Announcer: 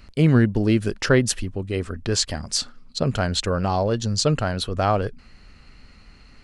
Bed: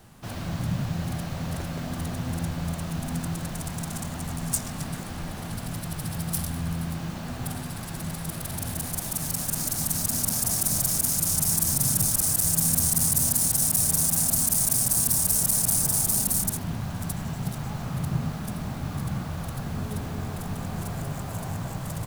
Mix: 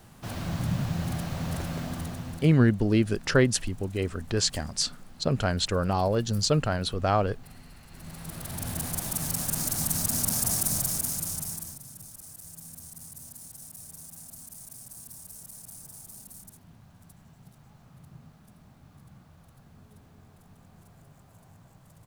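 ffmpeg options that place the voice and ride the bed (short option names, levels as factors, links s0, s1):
-filter_complex "[0:a]adelay=2250,volume=0.668[s0];[1:a]volume=7.08,afade=t=out:st=1.75:d=0.84:silence=0.125893,afade=t=in:st=7.89:d=0.91:silence=0.133352,afade=t=out:st=10.49:d=1.32:silence=0.0841395[s1];[s0][s1]amix=inputs=2:normalize=0"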